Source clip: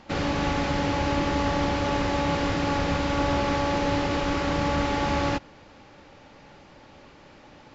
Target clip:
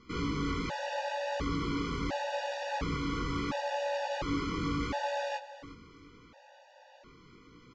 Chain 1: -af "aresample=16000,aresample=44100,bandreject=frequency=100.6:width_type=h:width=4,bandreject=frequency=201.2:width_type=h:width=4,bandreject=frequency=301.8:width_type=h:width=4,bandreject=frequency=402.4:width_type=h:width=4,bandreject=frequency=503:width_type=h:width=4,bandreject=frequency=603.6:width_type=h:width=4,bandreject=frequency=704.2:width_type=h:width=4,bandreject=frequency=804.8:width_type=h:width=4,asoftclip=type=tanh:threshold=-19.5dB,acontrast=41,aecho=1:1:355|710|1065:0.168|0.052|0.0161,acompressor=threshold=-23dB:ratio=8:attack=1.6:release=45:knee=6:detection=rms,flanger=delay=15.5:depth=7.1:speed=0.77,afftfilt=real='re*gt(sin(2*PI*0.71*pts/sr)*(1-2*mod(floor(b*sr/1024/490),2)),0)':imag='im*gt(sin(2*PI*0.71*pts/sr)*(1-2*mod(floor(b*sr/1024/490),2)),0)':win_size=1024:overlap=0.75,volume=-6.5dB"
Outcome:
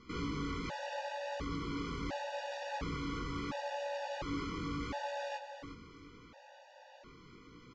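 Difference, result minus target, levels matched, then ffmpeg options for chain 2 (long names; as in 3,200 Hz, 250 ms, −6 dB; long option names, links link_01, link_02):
downward compressor: peak gain reduction +7.5 dB
-af "aresample=16000,aresample=44100,bandreject=frequency=100.6:width_type=h:width=4,bandreject=frequency=201.2:width_type=h:width=4,bandreject=frequency=301.8:width_type=h:width=4,bandreject=frequency=402.4:width_type=h:width=4,bandreject=frequency=503:width_type=h:width=4,bandreject=frequency=603.6:width_type=h:width=4,bandreject=frequency=704.2:width_type=h:width=4,bandreject=frequency=804.8:width_type=h:width=4,asoftclip=type=tanh:threshold=-19.5dB,acontrast=41,aecho=1:1:355|710|1065:0.168|0.052|0.0161,flanger=delay=15.5:depth=7.1:speed=0.77,afftfilt=real='re*gt(sin(2*PI*0.71*pts/sr)*(1-2*mod(floor(b*sr/1024/490),2)),0)':imag='im*gt(sin(2*PI*0.71*pts/sr)*(1-2*mod(floor(b*sr/1024/490),2)),0)':win_size=1024:overlap=0.75,volume=-6.5dB"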